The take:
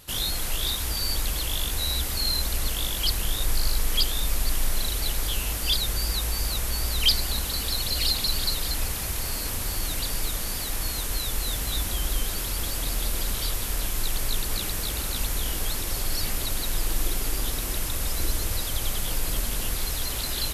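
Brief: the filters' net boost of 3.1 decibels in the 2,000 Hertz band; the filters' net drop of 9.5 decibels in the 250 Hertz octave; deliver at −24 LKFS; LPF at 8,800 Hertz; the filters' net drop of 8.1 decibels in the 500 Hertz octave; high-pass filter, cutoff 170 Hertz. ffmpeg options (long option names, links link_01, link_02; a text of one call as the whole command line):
ffmpeg -i in.wav -af "highpass=170,lowpass=8800,equalizer=frequency=250:width_type=o:gain=-9,equalizer=frequency=500:width_type=o:gain=-8,equalizer=frequency=2000:width_type=o:gain=4.5,volume=5dB" out.wav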